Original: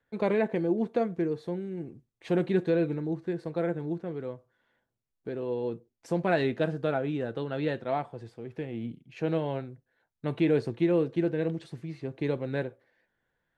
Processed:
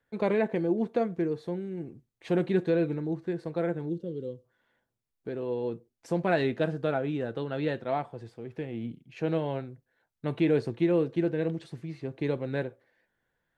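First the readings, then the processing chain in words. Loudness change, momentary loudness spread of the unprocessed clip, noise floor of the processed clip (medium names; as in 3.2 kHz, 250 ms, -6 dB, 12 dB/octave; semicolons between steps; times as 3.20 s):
0.0 dB, 14 LU, -82 dBFS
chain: time-frequency box 3.89–4.45 s, 570–2700 Hz -19 dB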